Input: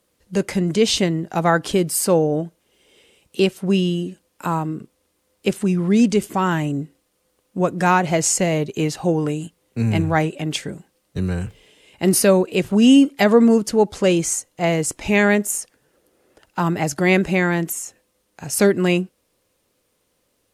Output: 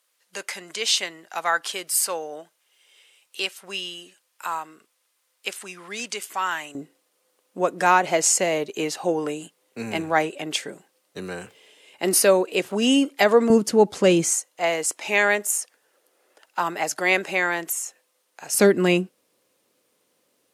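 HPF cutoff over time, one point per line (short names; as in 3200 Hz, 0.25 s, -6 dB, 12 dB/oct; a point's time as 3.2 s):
1100 Hz
from 6.75 s 410 Hz
from 13.5 s 170 Hz
from 14.31 s 580 Hz
from 18.55 s 200 Hz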